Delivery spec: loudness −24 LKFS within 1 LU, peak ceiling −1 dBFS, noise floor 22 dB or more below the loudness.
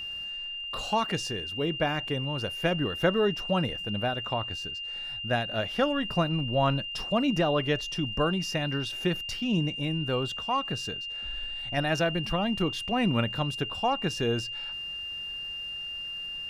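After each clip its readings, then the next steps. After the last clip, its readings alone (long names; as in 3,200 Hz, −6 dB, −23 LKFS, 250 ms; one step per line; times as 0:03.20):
crackle rate 27 per second; interfering tone 2,800 Hz; level of the tone −34 dBFS; integrated loudness −29.0 LKFS; sample peak −10.5 dBFS; target loudness −24.0 LKFS
→ click removal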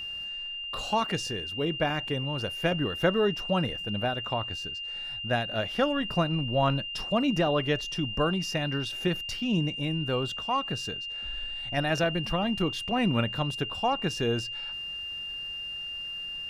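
crackle rate 0 per second; interfering tone 2,800 Hz; level of the tone −34 dBFS
→ notch filter 2,800 Hz, Q 30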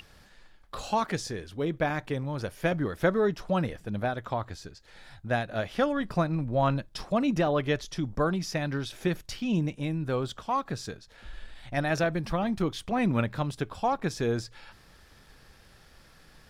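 interfering tone none found; integrated loudness −29.5 LKFS; sample peak −11.0 dBFS; target loudness −24.0 LKFS
→ level +5.5 dB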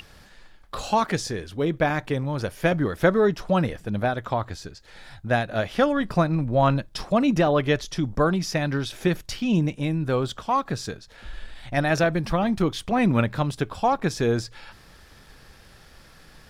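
integrated loudness −24.0 LKFS; sample peak −5.5 dBFS; background noise floor −51 dBFS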